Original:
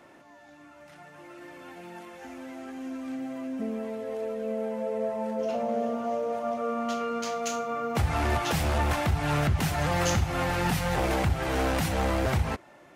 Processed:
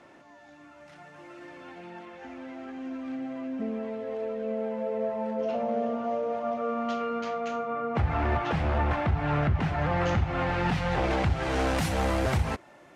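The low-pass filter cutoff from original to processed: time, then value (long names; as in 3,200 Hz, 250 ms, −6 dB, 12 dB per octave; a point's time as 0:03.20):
0:01.30 7,300 Hz
0:02.02 3,800 Hz
0:06.95 3,800 Hz
0:07.46 2,200 Hz
0:09.99 2,200 Hz
0:11.20 4,700 Hz
0:11.92 12,000 Hz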